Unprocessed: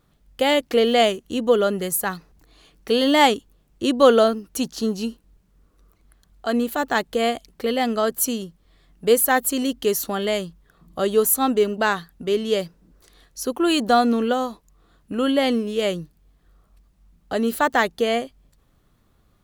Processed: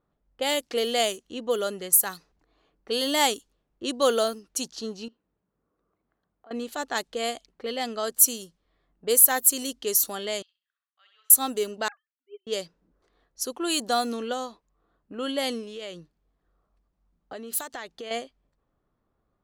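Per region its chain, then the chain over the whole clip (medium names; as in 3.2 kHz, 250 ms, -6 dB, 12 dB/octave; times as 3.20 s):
5.08–6.51 s: band-pass 100–4000 Hz + compression 2.5:1, threshold -48 dBFS
10.42–11.30 s: ladder high-pass 2 kHz, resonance 25% + distance through air 190 m + flutter echo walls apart 11.1 m, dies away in 0.56 s
11.88–12.47 s: formants replaced by sine waves + high-pass 1 kHz + upward expansion 2.5:1, over -43 dBFS
15.63–18.11 s: treble shelf 3.5 kHz +8 dB + compression, threshold -25 dBFS
whole clip: tone controls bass -8 dB, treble +14 dB; level-controlled noise filter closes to 1.2 kHz, open at -14 dBFS; trim -8 dB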